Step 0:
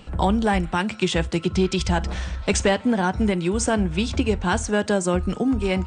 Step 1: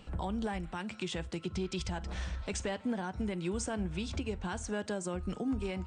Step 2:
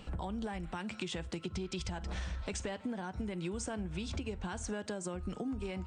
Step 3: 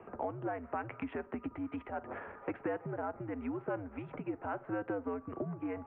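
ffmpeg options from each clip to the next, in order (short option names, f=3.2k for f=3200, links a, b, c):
-af "alimiter=limit=-17.5dB:level=0:latency=1:release=244,volume=-8.5dB"
-af "acompressor=threshold=-38dB:ratio=6,volume=3dB"
-filter_complex "[0:a]adynamicsmooth=sensitivity=7.5:basefreq=2k,highpass=f=150:t=q:w=0.5412,highpass=f=150:t=q:w=1.307,lowpass=f=2.8k:t=q:w=0.5176,lowpass=f=2.8k:t=q:w=0.7071,lowpass=f=2.8k:t=q:w=1.932,afreqshift=-96,acrossover=split=230 2000:gain=0.126 1 0.0708[a][b][c];[a][b][c]amix=inputs=3:normalize=0,volume=6.5dB"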